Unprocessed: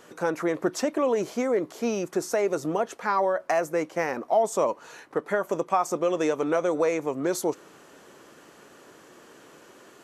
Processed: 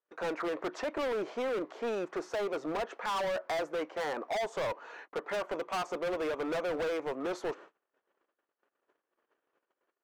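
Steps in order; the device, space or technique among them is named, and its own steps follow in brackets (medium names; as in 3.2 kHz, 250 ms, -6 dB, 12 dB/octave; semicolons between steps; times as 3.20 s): walkie-talkie (band-pass 420–2400 Hz; hard clipper -30.5 dBFS, distortion -5 dB; gate -49 dBFS, range -40 dB)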